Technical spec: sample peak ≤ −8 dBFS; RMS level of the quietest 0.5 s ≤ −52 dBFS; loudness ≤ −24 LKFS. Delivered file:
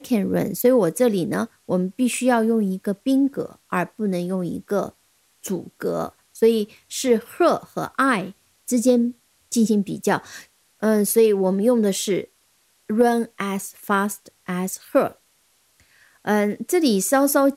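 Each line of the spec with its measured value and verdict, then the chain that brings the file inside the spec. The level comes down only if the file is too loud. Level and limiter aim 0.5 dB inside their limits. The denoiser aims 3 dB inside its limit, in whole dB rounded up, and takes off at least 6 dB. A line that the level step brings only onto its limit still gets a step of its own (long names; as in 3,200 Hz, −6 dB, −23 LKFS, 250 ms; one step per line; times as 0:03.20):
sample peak −6.5 dBFS: out of spec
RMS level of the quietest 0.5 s −62 dBFS: in spec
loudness −21.5 LKFS: out of spec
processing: level −3 dB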